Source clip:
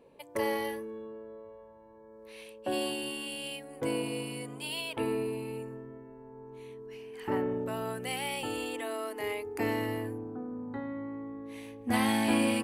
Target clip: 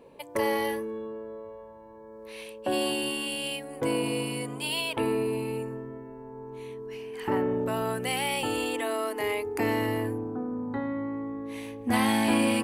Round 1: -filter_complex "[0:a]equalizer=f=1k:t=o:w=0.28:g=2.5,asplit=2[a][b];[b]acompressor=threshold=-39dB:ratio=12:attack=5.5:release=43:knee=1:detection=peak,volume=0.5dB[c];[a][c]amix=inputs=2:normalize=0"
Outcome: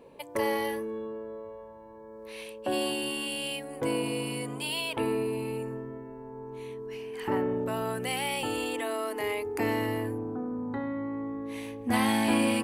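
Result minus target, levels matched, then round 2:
compressor: peak gain reduction +5.5 dB
-filter_complex "[0:a]equalizer=f=1k:t=o:w=0.28:g=2.5,asplit=2[a][b];[b]acompressor=threshold=-33dB:ratio=12:attack=5.5:release=43:knee=1:detection=peak,volume=0.5dB[c];[a][c]amix=inputs=2:normalize=0"

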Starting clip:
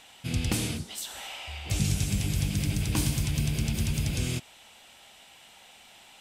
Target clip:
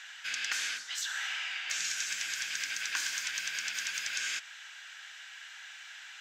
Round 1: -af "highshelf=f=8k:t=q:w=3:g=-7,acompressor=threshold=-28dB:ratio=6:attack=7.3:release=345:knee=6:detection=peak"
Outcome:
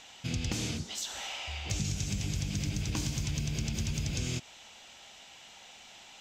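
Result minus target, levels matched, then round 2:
2000 Hz band -9.5 dB
-af "highpass=f=1.6k:t=q:w=7.9,highshelf=f=8k:t=q:w=3:g=-7,acompressor=threshold=-28dB:ratio=6:attack=7.3:release=345:knee=6:detection=peak"

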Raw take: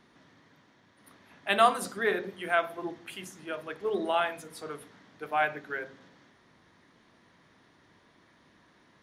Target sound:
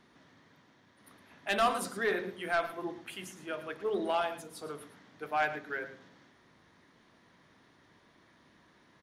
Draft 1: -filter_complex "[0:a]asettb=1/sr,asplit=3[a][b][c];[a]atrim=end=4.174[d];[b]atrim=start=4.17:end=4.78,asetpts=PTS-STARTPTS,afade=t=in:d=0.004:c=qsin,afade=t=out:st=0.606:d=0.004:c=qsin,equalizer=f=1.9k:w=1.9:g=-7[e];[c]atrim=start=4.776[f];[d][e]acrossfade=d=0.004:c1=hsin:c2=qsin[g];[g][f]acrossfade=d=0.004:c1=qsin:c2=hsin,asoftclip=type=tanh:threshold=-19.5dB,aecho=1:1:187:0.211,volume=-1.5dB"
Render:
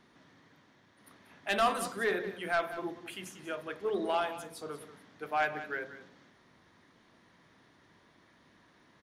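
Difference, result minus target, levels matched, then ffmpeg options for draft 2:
echo 75 ms late
-filter_complex "[0:a]asettb=1/sr,asplit=3[a][b][c];[a]atrim=end=4.174[d];[b]atrim=start=4.17:end=4.78,asetpts=PTS-STARTPTS,afade=t=in:d=0.004:c=qsin,afade=t=out:st=0.606:d=0.004:c=qsin,equalizer=f=1.9k:w=1.9:g=-7[e];[c]atrim=start=4.776[f];[d][e]acrossfade=d=0.004:c1=hsin:c2=qsin[g];[g][f]acrossfade=d=0.004:c1=qsin:c2=hsin,asoftclip=type=tanh:threshold=-19.5dB,aecho=1:1:112:0.211,volume=-1.5dB"

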